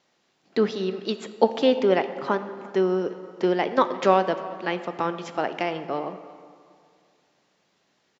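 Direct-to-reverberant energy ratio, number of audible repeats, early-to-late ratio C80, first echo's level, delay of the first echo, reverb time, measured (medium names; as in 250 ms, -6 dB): 10.0 dB, 1, 12.0 dB, -21.0 dB, 347 ms, 2.3 s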